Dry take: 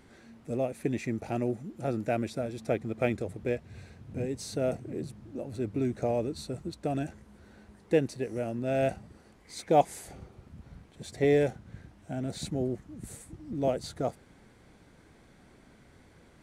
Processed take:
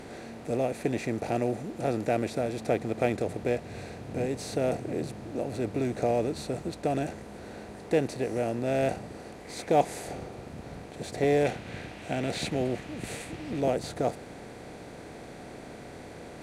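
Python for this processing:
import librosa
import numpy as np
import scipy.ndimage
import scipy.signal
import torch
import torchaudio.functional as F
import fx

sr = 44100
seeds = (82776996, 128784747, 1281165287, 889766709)

y = fx.bin_compress(x, sr, power=0.6)
y = fx.peak_eq(y, sr, hz=2700.0, db=10.0, octaves=1.4, at=(11.45, 13.61))
y = F.gain(torch.from_numpy(y), -2.0).numpy()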